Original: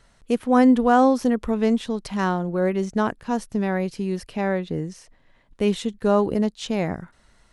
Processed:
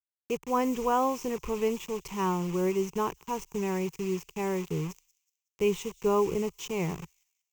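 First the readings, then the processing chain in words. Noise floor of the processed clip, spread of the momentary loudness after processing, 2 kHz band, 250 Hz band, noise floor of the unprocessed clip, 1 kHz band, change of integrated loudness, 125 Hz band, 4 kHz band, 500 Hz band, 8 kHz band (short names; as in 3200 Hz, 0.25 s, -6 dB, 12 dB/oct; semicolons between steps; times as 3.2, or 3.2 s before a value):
under -85 dBFS, 8 LU, -9.5 dB, -11.5 dB, -59 dBFS, -6.5 dB, -8.0 dB, -6.0 dB, -6.5 dB, -5.5 dB, 0.0 dB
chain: bit-crush 6-bit; ripple EQ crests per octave 0.74, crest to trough 13 dB; thin delay 0.185 s, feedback 34%, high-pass 4700 Hz, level -18.5 dB; gain -8.5 dB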